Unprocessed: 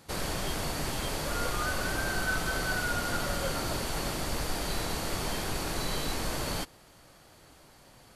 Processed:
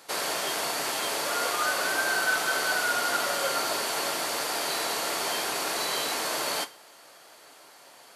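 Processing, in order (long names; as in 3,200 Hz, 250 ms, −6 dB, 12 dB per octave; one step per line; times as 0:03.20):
high-pass filter 490 Hz 12 dB per octave
convolution reverb, pre-delay 3 ms, DRR 10 dB
level +6 dB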